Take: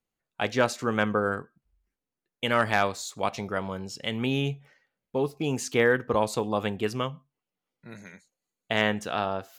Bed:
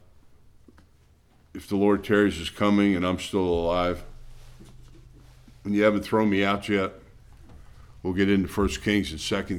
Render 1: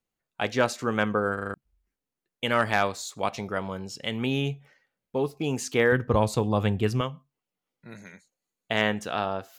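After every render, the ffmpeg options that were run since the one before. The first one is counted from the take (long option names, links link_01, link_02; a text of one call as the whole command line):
ffmpeg -i in.wav -filter_complex "[0:a]asettb=1/sr,asplit=3[link_01][link_02][link_03];[link_01]atrim=end=5.924[link_04];[link_02]atrim=start=5.92:end=7.01,asetpts=PTS-STARTPTS,afade=type=in:duration=0.004:curve=qsin,afade=type=out:start_time=1.086:duration=0.004:curve=qsin,equalizer=frequency=81:width_type=o:width=2:gain=13.5[link_05];[link_03]atrim=start=7.006[link_06];[link_04][link_05]acrossfade=duration=0.004:curve1=hsin:curve2=qsin[link_07];[link_07][link_06]acrossfade=duration=0.004:curve1=qsin:curve2=hsin,asplit=6[link_08][link_09][link_10][link_11][link_12][link_13];[link_08]atrim=end=1.382[link_14];[link_09]atrim=start=1.338:end=1.382[link_15];[link_10]atrim=start=1.338:end=1.382[link_16];[link_11]atrim=start=1.338:end=1.382[link_17];[link_12]atrim=start=1.338:end=1.382[link_18];[link_13]atrim=start=1.538[link_19];[link_14][link_15]acrossfade=duration=0.004:curve1=hsin:curve2=hsin[link_20];[link_20][link_16]acrossfade=duration=0.004:curve1=hsin:curve2=hsin[link_21];[link_21][link_17]acrossfade=duration=0.004:curve1=hsin:curve2=hsin[link_22];[link_22][link_18]acrossfade=duration=0.004:curve1=hsin:curve2=hsin[link_23];[link_23][link_19]acrossfade=duration=0.004:curve1=hsin:curve2=hsin" out.wav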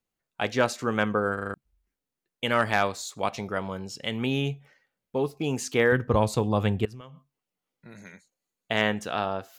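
ffmpeg -i in.wav -filter_complex "[0:a]asettb=1/sr,asplit=3[link_01][link_02][link_03];[link_01]atrim=end=6.854[link_04];[link_02]atrim=start=6.85:end=7.98,asetpts=PTS-STARTPTS,afade=type=in:duration=0.004:curve=qsin,afade=type=out:start_time=1.126:duration=0.004:curve=qsin,acompressor=threshold=-41dB:ratio=6:attack=3.2:release=140:knee=1:detection=peak[link_05];[link_03]atrim=start=7.976[link_06];[link_04][link_05]acrossfade=duration=0.004:curve1=hsin:curve2=qsin[link_07];[link_07][link_06]acrossfade=duration=0.004:curve1=qsin:curve2=hsin" out.wav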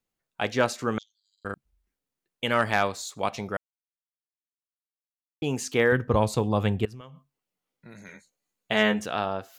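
ffmpeg -i in.wav -filter_complex "[0:a]asettb=1/sr,asplit=3[link_01][link_02][link_03];[link_01]atrim=end=0.984[link_04];[link_02]atrim=start=0.98:end=1.45,asetpts=PTS-STARTPTS,afade=type=in:duration=0.004:curve=qsin,afade=type=out:start_time=0.466:duration=0.004:curve=qsin,asuperpass=centerf=5100:order=12:qfactor=1.5[link_05];[link_03]atrim=start=1.446[link_06];[link_04][link_05]acrossfade=duration=0.004:curve1=hsin:curve2=qsin[link_07];[link_07][link_06]acrossfade=duration=0.004:curve1=qsin:curve2=hsin,asettb=1/sr,asplit=3[link_08][link_09][link_10];[link_08]atrim=end=8.074[link_11];[link_09]atrim=start=8.07:end=9.06,asetpts=PTS-STARTPTS,afade=type=in:duration=0.004:curve=qsin,afade=type=out:start_time=0.986:duration=0.004:curve=qsin,asplit=2[link_12][link_13];[link_13]adelay=14,volume=-2.5dB[link_14];[link_12][link_14]amix=inputs=2:normalize=0,atrim=end_sample=43659[link_15];[link_10]atrim=start=9.056[link_16];[link_11][link_15]acrossfade=duration=0.004:curve1=hsin:curve2=qsin[link_17];[link_17][link_16]acrossfade=duration=0.004:curve1=qsin:curve2=hsin,asplit=3[link_18][link_19][link_20];[link_18]atrim=end=3.57,asetpts=PTS-STARTPTS,afade=type=out:start_time=3.566:duration=0.004:curve=hsin[link_21];[link_19]atrim=start=3.57:end=5.42,asetpts=PTS-STARTPTS,volume=0[link_22];[link_20]atrim=start=5.42,asetpts=PTS-STARTPTS,afade=type=in:duration=0.004:curve=hsin[link_23];[link_21][link_22][link_23]concat=n=3:v=0:a=1" out.wav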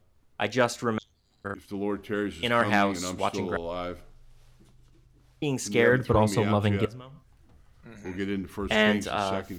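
ffmpeg -i in.wav -i bed.wav -filter_complex "[1:a]volume=-9dB[link_01];[0:a][link_01]amix=inputs=2:normalize=0" out.wav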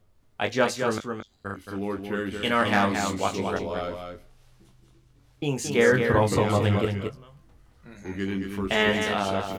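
ffmpeg -i in.wav -filter_complex "[0:a]asplit=2[link_01][link_02];[link_02]adelay=21,volume=-6.5dB[link_03];[link_01][link_03]amix=inputs=2:normalize=0,aecho=1:1:222:0.501" out.wav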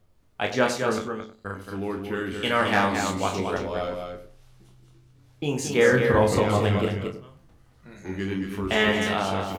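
ffmpeg -i in.wav -filter_complex "[0:a]asplit=2[link_01][link_02];[link_02]adelay=32,volume=-7.5dB[link_03];[link_01][link_03]amix=inputs=2:normalize=0,asplit=2[link_04][link_05];[link_05]adelay=94,lowpass=frequency=980:poles=1,volume=-9dB,asplit=2[link_06][link_07];[link_07]adelay=94,lowpass=frequency=980:poles=1,volume=0.21,asplit=2[link_08][link_09];[link_09]adelay=94,lowpass=frequency=980:poles=1,volume=0.21[link_10];[link_04][link_06][link_08][link_10]amix=inputs=4:normalize=0" out.wav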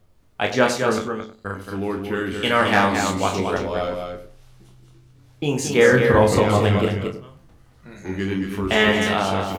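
ffmpeg -i in.wav -af "volume=4.5dB,alimiter=limit=-3dB:level=0:latency=1" out.wav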